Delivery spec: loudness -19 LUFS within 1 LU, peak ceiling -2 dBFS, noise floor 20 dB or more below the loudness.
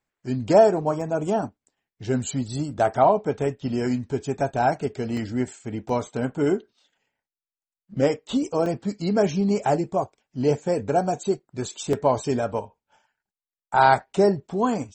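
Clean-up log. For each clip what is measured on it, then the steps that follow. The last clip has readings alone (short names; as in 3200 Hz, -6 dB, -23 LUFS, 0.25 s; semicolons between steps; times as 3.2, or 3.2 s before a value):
dropouts 5; longest dropout 3.0 ms; loudness -24.0 LUFS; peak -5.0 dBFS; loudness target -19.0 LUFS
-> interpolate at 1.01/5.17/5.89/8.66/11.93, 3 ms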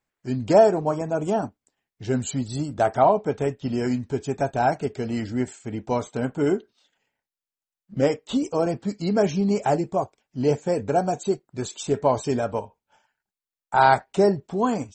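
dropouts 0; loudness -24.0 LUFS; peak -5.0 dBFS; loudness target -19.0 LUFS
-> gain +5 dB; limiter -2 dBFS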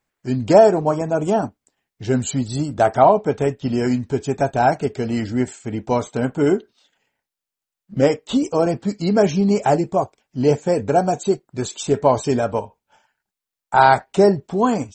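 loudness -19.0 LUFS; peak -2.0 dBFS; noise floor -87 dBFS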